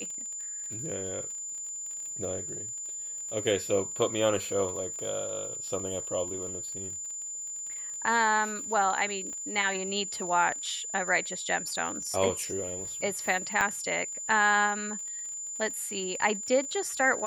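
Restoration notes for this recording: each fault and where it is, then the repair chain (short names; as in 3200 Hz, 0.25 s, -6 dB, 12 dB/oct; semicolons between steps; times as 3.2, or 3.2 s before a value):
crackle 33/s -38 dBFS
tone 7100 Hz -35 dBFS
9.33 pop -31 dBFS
13.61 pop -13 dBFS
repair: de-click; notch 7100 Hz, Q 30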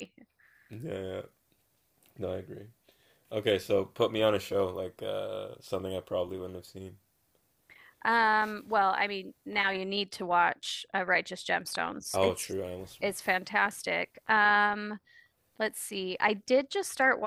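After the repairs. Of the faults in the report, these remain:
9.33 pop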